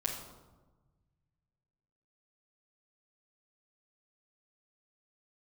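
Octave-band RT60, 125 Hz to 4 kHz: 2.5, 1.6, 1.3, 1.2, 0.80, 0.70 s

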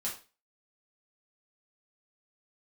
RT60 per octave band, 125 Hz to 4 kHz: 0.30, 0.35, 0.35, 0.30, 0.30, 0.30 s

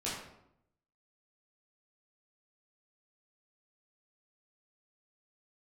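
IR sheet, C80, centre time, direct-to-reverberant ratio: 5.0 dB, 54 ms, -8.5 dB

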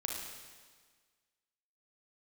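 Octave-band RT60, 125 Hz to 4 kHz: 1.5, 1.6, 1.5, 1.6, 1.5, 1.5 s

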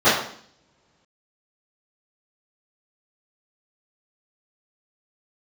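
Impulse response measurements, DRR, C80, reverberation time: -18.5 dB, 7.0 dB, 0.60 s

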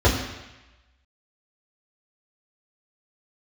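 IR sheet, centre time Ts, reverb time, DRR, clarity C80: 40 ms, 1.0 s, -7.5 dB, 7.0 dB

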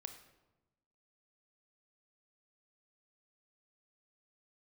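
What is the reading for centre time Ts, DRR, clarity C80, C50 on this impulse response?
15 ms, 7.0 dB, 11.5 dB, 9.0 dB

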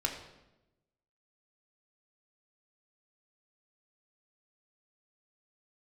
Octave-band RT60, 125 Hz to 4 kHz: 1.3, 1.2, 1.1, 0.85, 0.80, 0.75 s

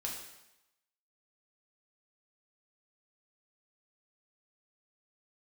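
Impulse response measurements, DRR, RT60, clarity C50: -2.5 dB, 0.90 s, 3.5 dB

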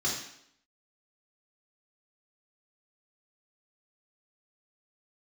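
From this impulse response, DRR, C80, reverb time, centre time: -5.5 dB, 6.5 dB, 0.70 s, 43 ms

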